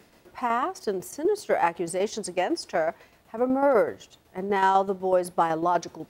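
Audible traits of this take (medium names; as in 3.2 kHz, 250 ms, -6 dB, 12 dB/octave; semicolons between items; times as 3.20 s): tremolo saw down 8 Hz, depth 55%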